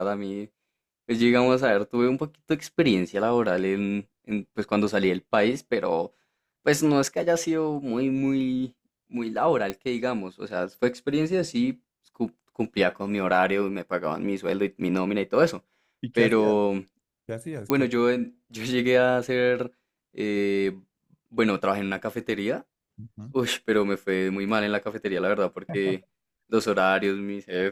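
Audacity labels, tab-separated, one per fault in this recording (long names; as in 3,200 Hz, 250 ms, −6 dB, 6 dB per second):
9.700000	9.700000	click −14 dBFS
17.700000	17.700000	click −9 dBFS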